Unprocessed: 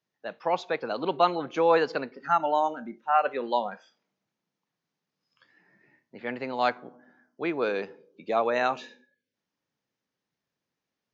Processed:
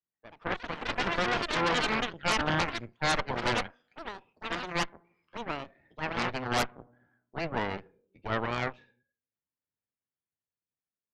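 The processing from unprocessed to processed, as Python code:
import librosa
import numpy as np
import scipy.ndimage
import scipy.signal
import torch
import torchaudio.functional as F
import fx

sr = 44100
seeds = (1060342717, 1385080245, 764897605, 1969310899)

y = fx.octave_divider(x, sr, octaves=1, level_db=-1.0)
y = fx.doppler_pass(y, sr, speed_mps=7, closest_m=6.5, pass_at_s=5.05)
y = fx.echo_pitch(y, sr, ms=146, semitones=6, count=3, db_per_echo=-3.0)
y = scipy.signal.sosfilt(scipy.signal.cheby1(2, 1.0, 2200.0, 'lowpass', fs=sr, output='sos'), y)
y = fx.cheby_harmonics(y, sr, harmonics=(8,), levels_db=(-6,), full_scale_db=-17.5)
y = y * 10.0 ** (-1.0 / 20.0)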